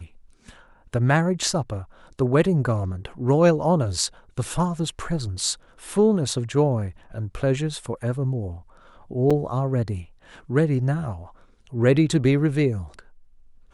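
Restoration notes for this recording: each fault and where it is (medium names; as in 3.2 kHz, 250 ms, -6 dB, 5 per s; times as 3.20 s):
9.30–9.31 s: dropout 5.7 ms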